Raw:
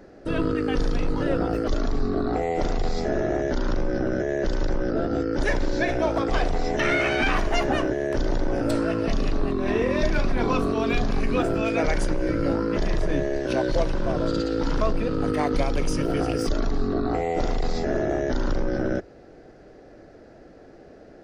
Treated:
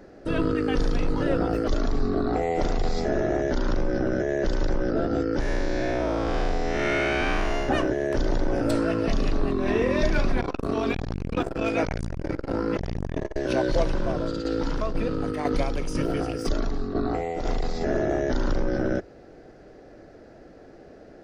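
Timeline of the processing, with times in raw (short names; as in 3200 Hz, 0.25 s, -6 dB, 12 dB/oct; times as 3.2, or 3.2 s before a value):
5.4–7.69 time blur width 0.222 s
10.4–13.36 core saturation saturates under 330 Hz
13.95–17.81 tremolo saw down 2 Hz, depth 55%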